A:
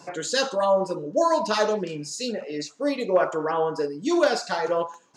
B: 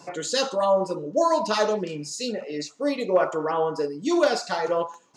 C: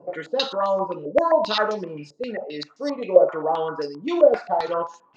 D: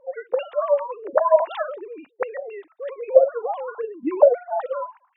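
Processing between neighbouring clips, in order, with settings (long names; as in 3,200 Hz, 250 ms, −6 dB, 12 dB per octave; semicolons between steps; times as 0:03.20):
notch filter 1,600 Hz, Q 12
low-pass on a step sequencer 7.6 Hz 540–5,400 Hz; level −2.5 dB
three sine waves on the formant tracks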